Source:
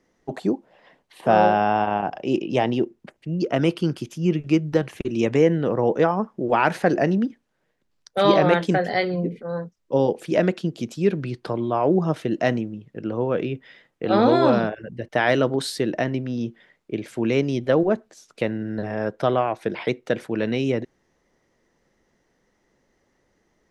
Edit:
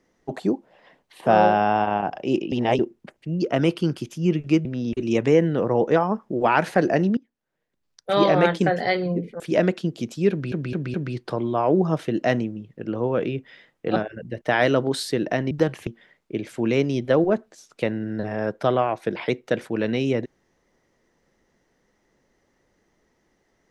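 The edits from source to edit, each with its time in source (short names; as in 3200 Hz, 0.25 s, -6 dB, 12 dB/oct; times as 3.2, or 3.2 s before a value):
2.52–2.79 reverse
4.65–5.01 swap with 16.18–16.46
7.25–8.55 fade in, from -19.5 dB
9.48–10.2 cut
11.11 stutter 0.21 s, 4 plays
14.13–14.63 cut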